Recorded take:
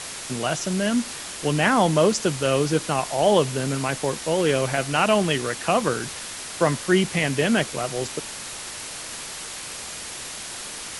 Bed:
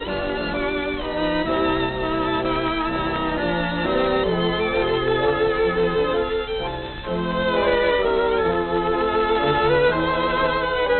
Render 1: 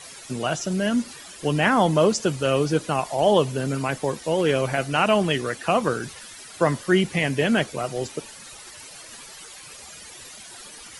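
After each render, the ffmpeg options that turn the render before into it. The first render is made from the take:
-af "afftdn=nr=13:nf=-35"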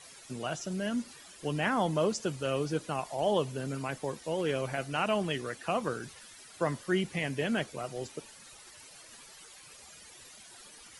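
-af "volume=0.316"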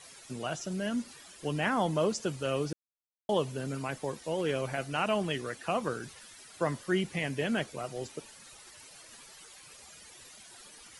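-filter_complex "[0:a]asplit=3[s0][s1][s2];[s0]atrim=end=2.73,asetpts=PTS-STARTPTS,afade=t=out:st=2.726:d=0.004:c=hsin[s3];[s1]atrim=start=2.73:end=3.29,asetpts=PTS-STARTPTS,volume=0[s4];[s2]atrim=start=3.29,asetpts=PTS-STARTPTS,afade=t=in:d=0.004:c=hsin[s5];[s3][s4][s5]concat=n=3:v=0:a=1"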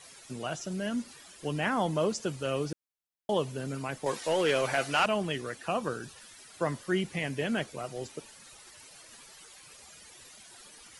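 -filter_complex "[0:a]asettb=1/sr,asplit=3[s0][s1][s2];[s0]atrim=end=4.064[s3];[s1]atrim=start=4.06:end=5.06,asetpts=PTS-STARTPTS,afade=t=in:d=0.004:c=qsin,afade=t=out:st=0.996:d=0.004:c=qsin,asplit=2[s4][s5];[s5]highpass=f=720:p=1,volume=6.31,asoftclip=type=tanh:threshold=0.168[s6];[s4][s6]amix=inputs=2:normalize=0,lowpass=f=7700:p=1,volume=0.501[s7];[s2]atrim=start=5.056[s8];[s3][s7]acrossfade=d=0.004:c1=hsin:c2=qsin[s9];[s9][s8]acrossfade=d=0.004:c1=qsin:c2=hsin,asettb=1/sr,asplit=3[s10][s11][s12];[s10]atrim=end=5.684[s13];[s11]atrim=start=5.68:end=6.18,asetpts=PTS-STARTPTS,afade=t=in:d=0.004:c=qsin,afade=t=out:st=0.496:d=0.004:c=qsin,asuperstop=centerf=2100:order=12:qfactor=7.1[s14];[s12]atrim=start=6.176[s15];[s13][s14]acrossfade=d=0.004:c1=hsin:c2=qsin[s16];[s16][s15]acrossfade=d=0.004:c1=qsin:c2=hsin"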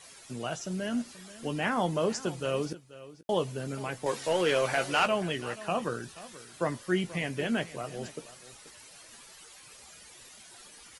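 -filter_complex "[0:a]asplit=2[s0][s1];[s1]adelay=17,volume=0.299[s2];[s0][s2]amix=inputs=2:normalize=0,aecho=1:1:483:0.141"

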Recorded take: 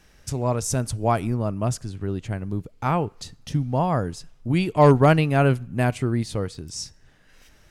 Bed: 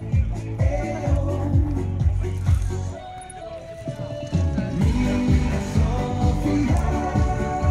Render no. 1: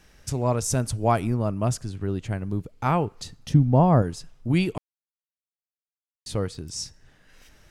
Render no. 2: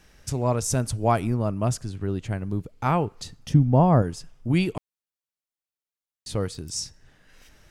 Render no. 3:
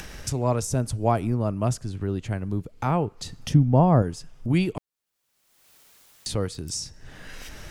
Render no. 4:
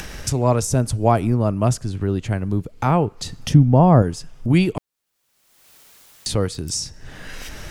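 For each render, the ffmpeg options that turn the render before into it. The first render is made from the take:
-filter_complex "[0:a]asettb=1/sr,asplit=3[s0][s1][s2];[s0]atrim=end=3.544[s3];[s1]atrim=start=3.54:end=4.02,asetpts=PTS-STARTPTS,afade=t=in:d=0.004:c=qsin,afade=t=out:st=0.476:d=0.004:c=qsin,tiltshelf=f=1100:g=6.5[s4];[s2]atrim=start=4.016[s5];[s3][s4]acrossfade=d=0.004:c1=hsin:c2=qsin[s6];[s6][s5]acrossfade=d=0.004:c1=qsin:c2=hsin,asplit=3[s7][s8][s9];[s7]atrim=end=4.78,asetpts=PTS-STARTPTS,afade=t=out:st=4.776:d=0.004:c=hsin[s10];[s8]atrim=start=4.78:end=6.26,asetpts=PTS-STARTPTS,volume=0[s11];[s9]atrim=start=6.26,asetpts=PTS-STARTPTS,afade=t=in:d=0.004:c=hsin[s12];[s10][s11][s12]concat=n=3:v=0:a=1"
-filter_complex "[0:a]asettb=1/sr,asplit=3[s0][s1][s2];[s0]atrim=end=3.394[s3];[s1]atrim=start=3.39:end=4.58,asetpts=PTS-STARTPTS,afade=t=in:d=0.004:c=qsin,afade=t=out:st=1.186:d=0.004:c=qsin,bandreject=f=4000:w=12[s4];[s2]atrim=start=4.576[s5];[s3][s4]acrossfade=d=0.004:c1=hsin:c2=qsin[s6];[s6][s5]acrossfade=d=0.004:c1=qsin:c2=hsin,asettb=1/sr,asplit=3[s7][s8][s9];[s7]atrim=end=6.404[s10];[s8]atrim=start=6.4:end=6.8,asetpts=PTS-STARTPTS,afade=t=in:d=0.004:c=qsin,afade=t=out:st=0.396:d=0.004:c=qsin,highshelf=f=5900:g=6.5[s11];[s9]atrim=start=6.796[s12];[s10][s11]acrossfade=d=0.004:c1=hsin:c2=qsin[s13];[s13][s12]acrossfade=d=0.004:c1=qsin:c2=hsin"
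-filter_complex "[0:a]acrossover=split=400|850[s0][s1][s2];[s2]alimiter=limit=0.0841:level=0:latency=1:release=425[s3];[s0][s1][s3]amix=inputs=3:normalize=0,acompressor=mode=upward:threshold=0.0501:ratio=2.5"
-af "volume=2,alimiter=limit=0.794:level=0:latency=1"

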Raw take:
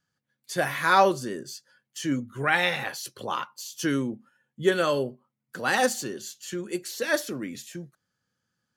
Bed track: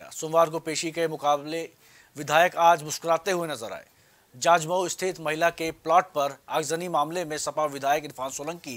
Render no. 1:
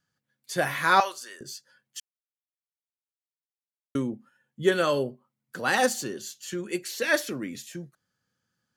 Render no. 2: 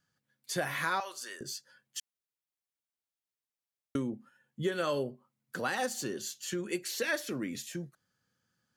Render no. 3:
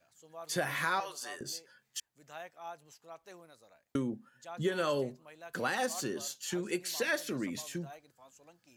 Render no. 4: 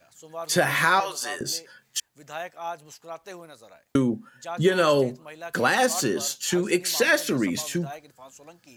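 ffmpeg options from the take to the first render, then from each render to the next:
-filter_complex "[0:a]asettb=1/sr,asplit=3[s0][s1][s2];[s0]atrim=end=1.004[s3];[s1]atrim=start=1:end=1.41,asetpts=PTS-STARTPTS,afade=t=in:d=0.004:c=qsin,afade=t=out:st=0.406:d=0.004:c=qsin,highpass=1200[s4];[s2]atrim=start=1.406[s5];[s3][s4]acrossfade=d=0.004:c1=hsin:c2=qsin[s6];[s6][s5]acrossfade=d=0.004:c1=qsin:c2=hsin,asettb=1/sr,asplit=3[s7][s8][s9];[s7]atrim=end=6.634[s10];[s8]atrim=start=6.63:end=7.35,asetpts=PTS-STARTPTS,afade=t=in:d=0.004:c=qsin,afade=t=out:st=0.716:d=0.004:c=qsin,equalizer=f=2300:w=1.5:g=5.5[s11];[s9]atrim=start=7.346[s12];[s10][s11]acrossfade=d=0.004:c1=hsin:c2=qsin[s13];[s13][s12]acrossfade=d=0.004:c1=qsin:c2=hsin,asplit=3[s14][s15][s16];[s14]atrim=end=2,asetpts=PTS-STARTPTS,afade=t=out:st=1.996:d=0.004:c=hsin[s17];[s15]atrim=start=2:end=3.95,asetpts=PTS-STARTPTS,volume=0[s18];[s16]atrim=start=3.95,asetpts=PTS-STARTPTS,afade=t=in:d=0.004:c=hsin[s19];[s17][s18][s19]concat=n=3:v=0:a=1"
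-af "alimiter=limit=0.2:level=0:latency=1:release=238,acompressor=threshold=0.0224:ratio=2"
-filter_complex "[1:a]volume=0.0473[s0];[0:a][s0]amix=inputs=2:normalize=0"
-af "volume=3.76"

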